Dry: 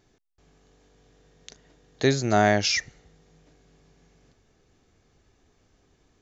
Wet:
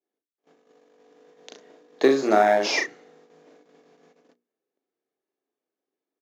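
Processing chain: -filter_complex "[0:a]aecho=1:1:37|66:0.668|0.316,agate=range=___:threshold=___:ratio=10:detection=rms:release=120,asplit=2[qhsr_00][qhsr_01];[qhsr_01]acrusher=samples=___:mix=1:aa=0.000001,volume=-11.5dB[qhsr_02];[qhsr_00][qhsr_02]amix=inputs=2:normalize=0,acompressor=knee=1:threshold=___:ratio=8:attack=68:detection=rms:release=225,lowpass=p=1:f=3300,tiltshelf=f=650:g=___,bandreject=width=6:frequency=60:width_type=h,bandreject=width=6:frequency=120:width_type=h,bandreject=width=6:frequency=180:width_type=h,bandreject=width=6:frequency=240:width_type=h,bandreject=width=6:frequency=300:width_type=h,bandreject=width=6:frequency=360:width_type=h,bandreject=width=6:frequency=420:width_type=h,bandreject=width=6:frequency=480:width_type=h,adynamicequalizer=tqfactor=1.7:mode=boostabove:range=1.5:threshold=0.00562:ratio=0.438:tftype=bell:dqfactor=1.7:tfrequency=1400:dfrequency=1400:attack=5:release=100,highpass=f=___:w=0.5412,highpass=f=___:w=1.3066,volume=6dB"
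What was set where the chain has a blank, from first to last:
-28dB, -55dB, 29, -21dB, 4, 310, 310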